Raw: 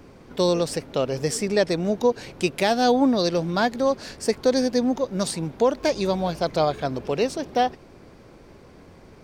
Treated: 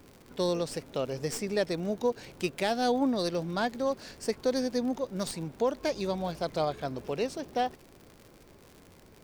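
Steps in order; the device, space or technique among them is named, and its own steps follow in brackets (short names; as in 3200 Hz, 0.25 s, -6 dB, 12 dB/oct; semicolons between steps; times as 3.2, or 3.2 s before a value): record under a worn stylus (tracing distortion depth 0.037 ms; crackle 86/s -32 dBFS; white noise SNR 41 dB); gain -8 dB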